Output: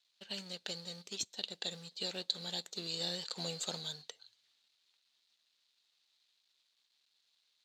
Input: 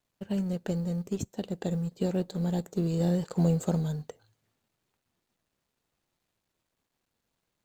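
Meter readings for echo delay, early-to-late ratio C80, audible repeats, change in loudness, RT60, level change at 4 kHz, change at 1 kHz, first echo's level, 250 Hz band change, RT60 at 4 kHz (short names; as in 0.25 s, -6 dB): none, none, none, -9.0 dB, none, +13.0 dB, -8.5 dB, none, -21.5 dB, none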